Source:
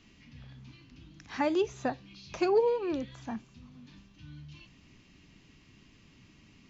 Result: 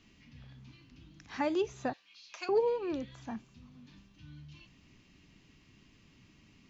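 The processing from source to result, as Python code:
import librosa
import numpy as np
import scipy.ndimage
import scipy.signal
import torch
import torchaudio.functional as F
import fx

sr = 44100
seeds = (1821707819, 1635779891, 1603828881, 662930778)

y = fx.highpass(x, sr, hz=1200.0, slope=12, at=(1.93, 2.49))
y = y * 10.0 ** (-3.0 / 20.0)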